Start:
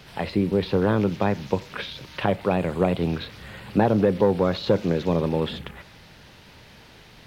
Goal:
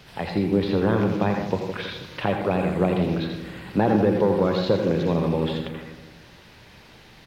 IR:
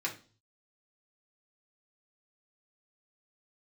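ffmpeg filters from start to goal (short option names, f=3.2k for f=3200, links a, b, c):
-filter_complex "[0:a]asplit=2[a][b];[b]adelay=162,lowpass=f=1.1k:p=1,volume=-8dB,asplit=2[c][d];[d]adelay=162,lowpass=f=1.1k:p=1,volume=0.5,asplit=2[e][f];[f]adelay=162,lowpass=f=1.1k:p=1,volume=0.5,asplit=2[g][h];[h]adelay=162,lowpass=f=1.1k:p=1,volume=0.5,asplit=2[i][j];[j]adelay=162,lowpass=f=1.1k:p=1,volume=0.5,asplit=2[k][l];[l]adelay=162,lowpass=f=1.1k:p=1,volume=0.5[m];[a][c][e][g][i][k][m]amix=inputs=7:normalize=0,asplit=2[n][o];[1:a]atrim=start_sample=2205,adelay=80[p];[o][p]afir=irnorm=-1:irlink=0,volume=-8dB[q];[n][q]amix=inputs=2:normalize=0,volume=-1.5dB"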